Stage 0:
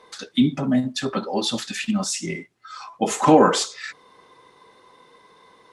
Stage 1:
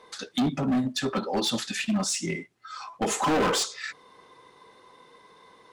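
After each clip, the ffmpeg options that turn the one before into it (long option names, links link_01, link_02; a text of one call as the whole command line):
ffmpeg -i in.wav -af "asoftclip=type=hard:threshold=-19.5dB,volume=-1.5dB" out.wav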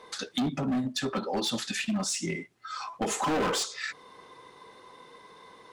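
ffmpeg -i in.wav -af "acompressor=threshold=-34dB:ratio=2,volume=2.5dB" out.wav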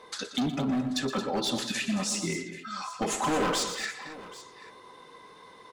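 ffmpeg -i in.wav -af "aecho=1:1:117|120|160|223|785:0.211|0.2|0.1|0.282|0.126" out.wav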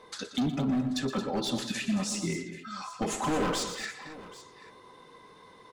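ffmpeg -i in.wav -af "lowshelf=frequency=270:gain=7,volume=-3.5dB" out.wav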